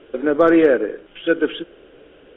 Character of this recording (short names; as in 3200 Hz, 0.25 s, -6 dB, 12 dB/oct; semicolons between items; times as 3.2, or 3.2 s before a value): noise floor -49 dBFS; spectral tilt -1.0 dB/oct